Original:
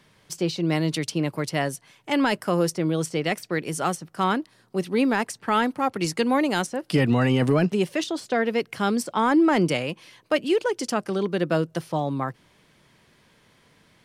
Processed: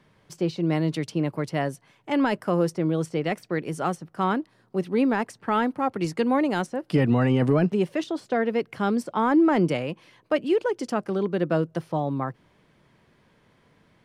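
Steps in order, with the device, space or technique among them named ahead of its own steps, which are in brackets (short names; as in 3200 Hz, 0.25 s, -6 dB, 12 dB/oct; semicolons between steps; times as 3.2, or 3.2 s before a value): through cloth (high shelf 2600 Hz -12 dB)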